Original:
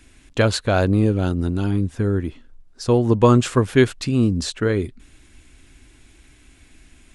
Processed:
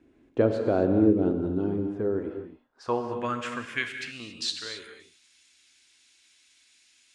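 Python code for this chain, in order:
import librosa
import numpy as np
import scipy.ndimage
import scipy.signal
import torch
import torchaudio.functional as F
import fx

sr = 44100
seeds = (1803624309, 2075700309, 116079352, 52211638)

y = fx.graphic_eq_15(x, sr, hz=(400, 1000, 4000), db=(-10, -11, -7), at=(3.07, 4.2))
y = fx.filter_sweep_bandpass(y, sr, from_hz=370.0, to_hz=4900.0, start_s=1.56, end_s=4.76, q=1.5)
y = fx.rev_gated(y, sr, seeds[0], gate_ms=300, shape='flat', drr_db=5.0)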